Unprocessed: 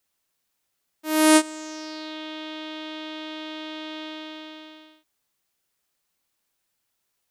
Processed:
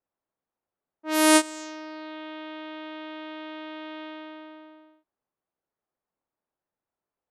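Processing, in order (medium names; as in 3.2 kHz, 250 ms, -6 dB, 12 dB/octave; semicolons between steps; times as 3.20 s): level-controlled noise filter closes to 870 Hz, open at -21 dBFS; bass shelf 240 Hz -8 dB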